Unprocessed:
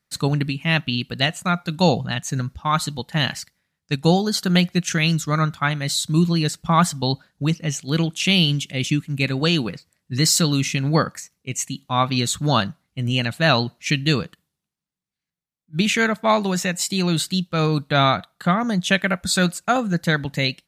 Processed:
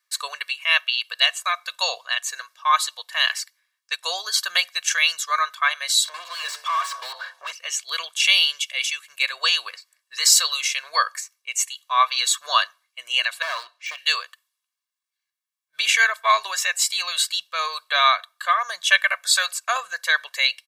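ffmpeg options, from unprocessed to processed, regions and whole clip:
-filter_complex "[0:a]asettb=1/sr,asplit=3[a][b][c];[a]atrim=end=6.054[d];[b]atrim=start=6.05:end=7.52,asetpts=PTS-STARTPTS,afade=t=in:d=0.004:c=qsin,afade=t=out:st=1.466:d=0.004:c=qsin,acompressor=threshold=-32dB:ratio=3:attack=3.2:release=140:knee=1:detection=peak,bandreject=f=74.54:t=h:w=4,bandreject=f=149.08:t=h:w=4,bandreject=f=223.62:t=h:w=4,bandreject=f=298.16:t=h:w=4,bandreject=f=372.7:t=h:w=4,bandreject=f=447.24:t=h:w=4,bandreject=f=521.78:t=h:w=4,bandreject=f=596.32:t=h:w=4,bandreject=f=670.86:t=h:w=4,bandreject=f=745.4:t=h:w=4,bandreject=f=819.94:t=h:w=4,bandreject=f=894.48:t=h:w=4,bandreject=f=969.02:t=h:w=4,bandreject=f=1.04356k:t=h:w=4,bandreject=f=1.1181k:t=h:w=4,asplit=2[e][f];[f]highpass=f=720:p=1,volume=32dB,asoftclip=type=tanh:threshold=-17dB[g];[e][g]amix=inputs=2:normalize=0,lowpass=f=1.4k:p=1,volume=-6dB[h];[c]atrim=start=7.516[i];[d][h]acrossfade=d=0.004:c1=hsin:c2=qsin[j];[j][i]acrossfade=d=0.004:c1=qsin:c2=hsin,asettb=1/sr,asplit=3[k][l][m];[k]atrim=end=13.424[n];[l]atrim=start=13.42:end=13.98,asetpts=PTS-STARTPTS,afade=t=in:d=0.004:c=qsin,afade=t=out:st=0.556:d=0.004:c=qsin,aemphasis=mode=reproduction:type=50fm,deesser=0.9,asoftclip=type=hard:threshold=-21dB[o];[m]atrim=start=13.976[p];[n][o]acrossfade=d=0.004:c1=hsin:c2=qsin[q];[q][p]acrossfade=d=0.004:c1=qsin:c2=hsin,highpass=f=950:w=0.5412,highpass=f=950:w=1.3066,aecho=1:1:1.8:0.93,volume=1dB"

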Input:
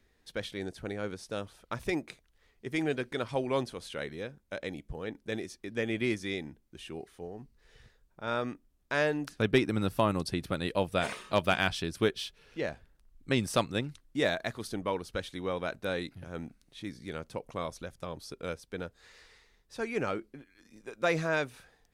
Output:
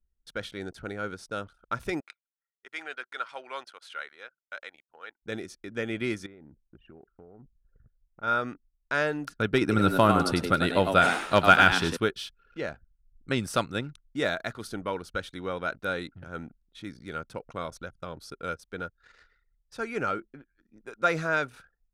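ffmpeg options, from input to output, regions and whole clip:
-filter_complex "[0:a]asettb=1/sr,asplit=3[a][b][c];[a]atrim=end=2.004[d];[b]atrim=start=2:end=5.23,asetpts=PTS-STARTPTS,afade=t=in:d=0.004:c=qsin,afade=t=out:st=3.226:d=0.004:c=qsin,highpass=1k,highshelf=f=5.6k:g=-9.5[e];[c]atrim=start=5.226[f];[d][e]acrossfade=d=0.004:c1=hsin:c2=qsin[g];[g][f]acrossfade=d=0.004:c1=qsin:c2=hsin,asettb=1/sr,asplit=3[h][i][j];[h]atrim=end=6.264[k];[i]atrim=start=6.26:end=8.23,asetpts=PTS-STARTPTS,afade=t=in:d=0.004:c=qsin,afade=t=out:st=1.966:d=0.004:c=qsin,lowpass=1.3k,aemphasis=mode=production:type=50kf,acompressor=threshold=-45dB:ratio=20:attack=3.2:release=140:knee=1:detection=peak[l];[j]atrim=start=8.226[m];[k][l]acrossfade=d=0.004:c1=hsin:c2=qsin[n];[n][m]acrossfade=d=0.004:c1=qsin:c2=hsin,asettb=1/sr,asplit=3[o][p][q];[o]atrim=end=9.614[r];[p]atrim=start=9.61:end=11.97,asetpts=PTS-STARTPTS,afade=t=in:d=0.004:c=qsin,afade=t=out:st=2.356:d=0.004:c=qsin,acontrast=39,asplit=5[s][t][u][v][w];[t]adelay=100,afreqshift=84,volume=-6.5dB[x];[u]adelay=200,afreqshift=168,volume=-17dB[y];[v]adelay=300,afreqshift=252,volume=-27.4dB[z];[w]adelay=400,afreqshift=336,volume=-37.9dB[aa];[s][x][y][z][aa]amix=inputs=5:normalize=0,atrim=end_sample=104076[ab];[q]atrim=start=11.966[ac];[r][ab]acrossfade=d=0.004:c1=hsin:c2=qsin[ad];[ad][ac]acrossfade=d=0.004:c1=qsin:c2=hsin,equalizer=f=1.4k:t=o:w=0.21:g=12.5,anlmdn=0.001"

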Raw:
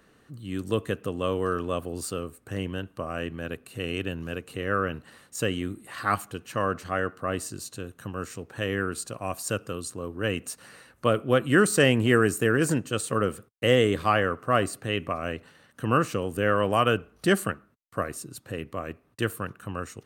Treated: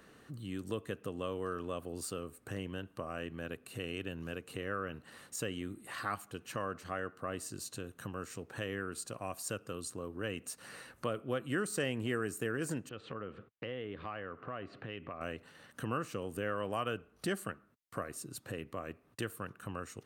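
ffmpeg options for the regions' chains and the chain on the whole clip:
-filter_complex "[0:a]asettb=1/sr,asplit=3[a][b][c];[a]atrim=end=12.894[d];[b]atrim=start=12.89:end=15.21,asetpts=PTS-STARTPTS,afade=t=in:d=0.004:c=qsin,afade=t=out:st=2.316:d=0.004:c=qsin,lowpass=f=3.4k:w=0.5412,lowpass=f=3.4k:w=1.3066,acompressor=threshold=-41dB:ratio=2:attack=3.2:release=140:knee=1:detection=peak[e];[c]atrim=start=15.206[f];[d][e]acrossfade=d=0.004:c1=hsin:c2=qsin[g];[g][f]acrossfade=d=0.004:c1=qsin:c2=hsin,lowshelf=f=83:g=-5,acompressor=threshold=-45dB:ratio=2,volume=1dB"

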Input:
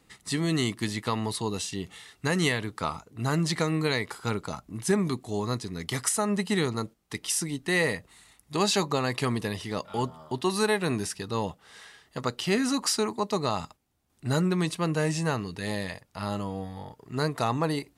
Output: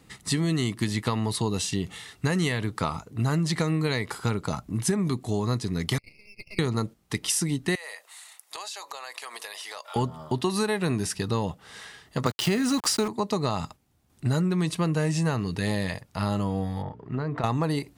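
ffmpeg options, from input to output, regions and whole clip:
-filter_complex "[0:a]asettb=1/sr,asplit=3[a][b][c];[a]atrim=end=5.984[d];[b]atrim=start=5.98:end=6.59,asetpts=PTS-STARTPTS,afade=t=in:d=0.004:c=qsin,afade=t=out:st=0.606:d=0.004:c=qsin,asuperpass=centerf=2400:order=12:qfactor=3.9,aeval=exprs='max(val(0),0)':c=same[e];[c]atrim=start=6.586[f];[d][e]acrossfade=d=0.004:c1=hsin:c2=qsin[g];[g][f]acrossfade=d=0.004:c1=qsin:c2=hsin,asettb=1/sr,asplit=3[h][i][j];[h]atrim=end=7.754[k];[i]atrim=start=7.75:end=9.96,asetpts=PTS-STARTPTS,afade=t=in:d=0.004:c=qsin,afade=t=out:st=2.206:d=0.004:c=qsin,highpass=f=630:w=0.5412,highpass=f=630:w=1.3066,highshelf=f=5k:g=6.5,acompressor=threshold=-39dB:ratio=10:attack=3.2:release=140:knee=1:detection=peak[l];[j]atrim=start=9.956[m];[k][l]acrossfade=d=0.004:c1=hsin:c2=qsin[n];[n][m]acrossfade=d=0.004:c1=qsin:c2=hsin,asettb=1/sr,asplit=3[o][p][q];[o]atrim=end=12.264[r];[p]atrim=start=12.26:end=13.08,asetpts=PTS-STARTPTS,afade=t=in:d=0.004:c=qsin,afade=t=out:st=0.816:d=0.004:c=qsin,highpass=f=84:w=0.5412,highpass=f=84:w=1.3066,acontrast=24,aeval=exprs='val(0)*gte(abs(val(0)),0.0282)':c=same[s];[q]atrim=start=13.076[t];[r][s]acrossfade=d=0.004:c1=hsin:c2=qsin[u];[u][t]acrossfade=d=0.004:c1=qsin:c2=hsin,asettb=1/sr,asplit=3[v][w][x];[v]atrim=end=16.824[y];[w]atrim=start=16.82:end=17.44,asetpts=PTS-STARTPTS,afade=t=in:d=0.004:c=qsin,afade=t=out:st=0.616:d=0.004:c=qsin,lowpass=2.1k,bandreject=f=60:t=h:w=6,bandreject=f=120:t=h:w=6,bandreject=f=180:t=h:w=6,bandreject=f=240:t=h:w=6,bandreject=f=300:t=h:w=6,bandreject=f=360:t=h:w=6,bandreject=f=420:t=h:w=6,acompressor=threshold=-32dB:ratio=12:attack=3.2:release=140:knee=1:detection=peak[z];[x]atrim=start=17.436[aa];[y][z]acrossfade=d=0.004:c1=hsin:c2=qsin[ab];[ab][aa]acrossfade=d=0.004:c1=qsin:c2=hsin,equalizer=f=120:t=o:w=2:g=5.5,acompressor=threshold=-27dB:ratio=6,volume=5dB"

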